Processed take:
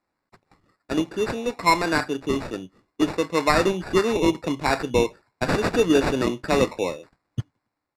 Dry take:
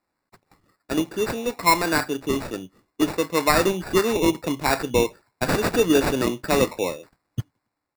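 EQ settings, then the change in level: distance through air 57 m; 0.0 dB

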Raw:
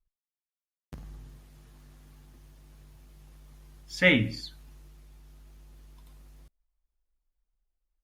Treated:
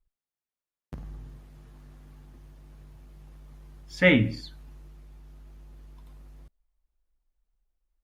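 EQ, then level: treble shelf 2.5 kHz -9.5 dB; +4.0 dB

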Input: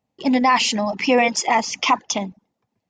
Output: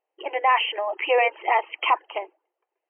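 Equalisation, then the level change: brick-wall FIR band-pass 320–3200 Hz; -2.5 dB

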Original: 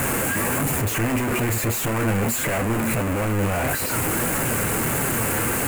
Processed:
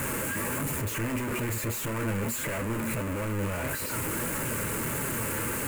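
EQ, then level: Butterworth band-stop 740 Hz, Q 5.3; -8.0 dB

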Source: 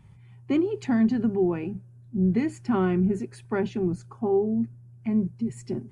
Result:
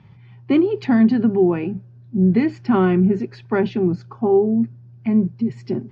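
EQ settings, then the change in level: high-pass 110 Hz; steep low-pass 5.2 kHz 36 dB/octave; +7.5 dB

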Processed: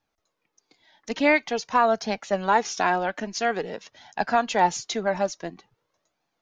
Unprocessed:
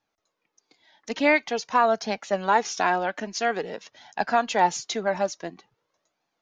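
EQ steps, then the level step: bass shelf 96 Hz +11.5 dB; 0.0 dB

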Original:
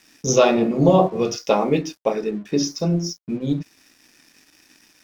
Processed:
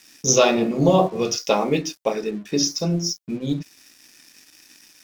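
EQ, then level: treble shelf 2.7 kHz +9 dB; -2.0 dB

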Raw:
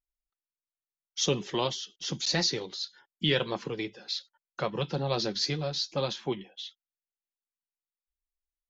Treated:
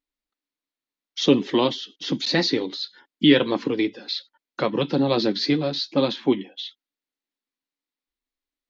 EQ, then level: peaking EQ 280 Hz +14 dB 0.6 oct; dynamic bell 6.7 kHz, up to -7 dB, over -46 dBFS, Q 1.1; graphic EQ 125/250/500/1000/2000/4000 Hz +4/+8/+8/+7/+9/+11 dB; -4.5 dB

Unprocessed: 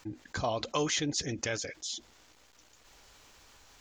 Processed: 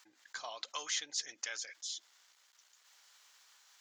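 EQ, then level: high-pass 1.3 kHz 12 dB/octave; peaking EQ 2.5 kHz -4.5 dB 0.33 oct; -3.5 dB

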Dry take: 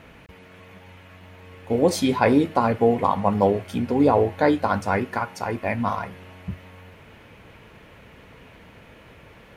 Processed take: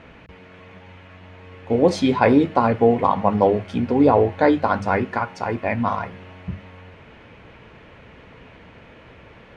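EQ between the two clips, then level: distance through air 110 m; hum notches 50/100/150/200 Hz; +3.0 dB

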